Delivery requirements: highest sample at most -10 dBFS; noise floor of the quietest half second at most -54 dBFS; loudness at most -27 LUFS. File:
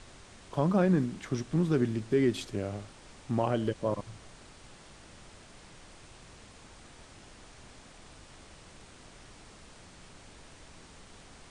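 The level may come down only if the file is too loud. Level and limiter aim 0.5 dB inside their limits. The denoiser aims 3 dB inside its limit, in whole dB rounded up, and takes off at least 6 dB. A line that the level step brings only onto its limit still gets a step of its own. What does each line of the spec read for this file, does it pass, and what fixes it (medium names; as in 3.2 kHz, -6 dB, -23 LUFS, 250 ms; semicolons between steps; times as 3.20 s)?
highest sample -14.0 dBFS: pass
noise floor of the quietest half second -52 dBFS: fail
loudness -30.0 LUFS: pass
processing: noise reduction 6 dB, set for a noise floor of -52 dBFS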